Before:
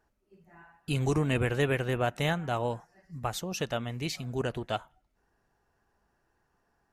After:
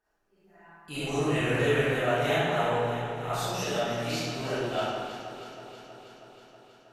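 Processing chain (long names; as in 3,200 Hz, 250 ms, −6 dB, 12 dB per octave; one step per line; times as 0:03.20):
low-shelf EQ 190 Hz −10 dB
delay that swaps between a low-pass and a high-pass 160 ms, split 1,300 Hz, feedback 84%, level −10 dB
convolution reverb RT60 1.8 s, pre-delay 5 ms, DRR −12.5 dB
level −8.5 dB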